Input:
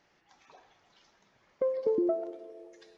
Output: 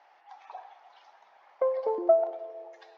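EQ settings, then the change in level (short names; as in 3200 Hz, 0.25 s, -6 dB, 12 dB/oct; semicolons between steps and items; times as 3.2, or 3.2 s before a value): resonant high-pass 780 Hz, resonance Q 4.5; air absorption 170 m; +5.0 dB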